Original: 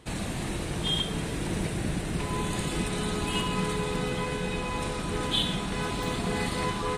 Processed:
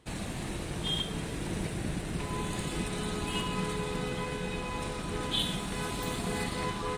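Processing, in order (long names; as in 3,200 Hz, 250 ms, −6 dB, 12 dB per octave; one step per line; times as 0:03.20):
0:05.39–0:06.44: high-shelf EQ 10,000 Hz +11.5 dB
in parallel at −3.5 dB: dead-zone distortion −43.5 dBFS
on the sum: level −8 dB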